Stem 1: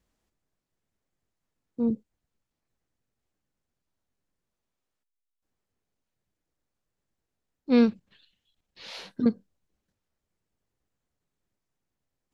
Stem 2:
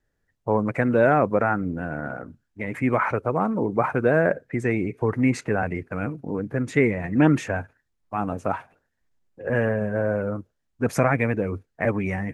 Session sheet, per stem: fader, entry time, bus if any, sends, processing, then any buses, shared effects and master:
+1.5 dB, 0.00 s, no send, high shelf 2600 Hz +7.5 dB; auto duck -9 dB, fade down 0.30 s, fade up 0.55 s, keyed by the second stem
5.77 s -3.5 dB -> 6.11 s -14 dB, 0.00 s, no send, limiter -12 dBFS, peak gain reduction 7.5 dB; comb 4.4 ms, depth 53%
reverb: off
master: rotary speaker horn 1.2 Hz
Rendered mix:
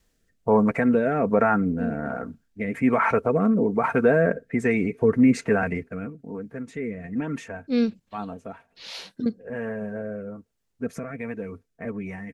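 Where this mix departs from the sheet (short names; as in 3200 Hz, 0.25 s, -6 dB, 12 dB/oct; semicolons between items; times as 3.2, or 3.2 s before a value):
stem 1 +1.5 dB -> +8.5 dB; stem 2 -3.5 dB -> +3.5 dB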